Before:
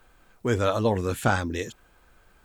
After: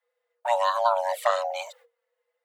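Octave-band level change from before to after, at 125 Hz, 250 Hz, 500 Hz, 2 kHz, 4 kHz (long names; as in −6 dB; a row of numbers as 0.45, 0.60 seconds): below −40 dB, below −40 dB, 0.0 dB, −4.0 dB, +1.0 dB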